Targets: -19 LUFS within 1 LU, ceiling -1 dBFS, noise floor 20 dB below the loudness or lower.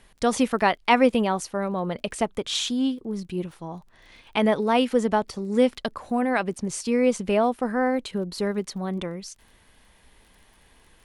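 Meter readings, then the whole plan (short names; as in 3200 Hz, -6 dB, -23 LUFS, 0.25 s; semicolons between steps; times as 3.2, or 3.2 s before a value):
ticks 20/s; loudness -24.5 LUFS; peak -5.5 dBFS; loudness target -19.0 LUFS
-> de-click; gain +5.5 dB; limiter -1 dBFS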